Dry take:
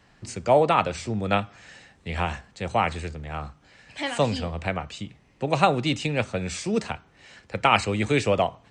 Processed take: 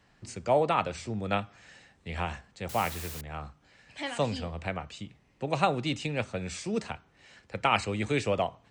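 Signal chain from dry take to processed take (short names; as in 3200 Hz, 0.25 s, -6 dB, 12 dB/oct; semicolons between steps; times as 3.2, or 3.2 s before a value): 2.69–3.21 requantised 6-bit, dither triangular; gain -6 dB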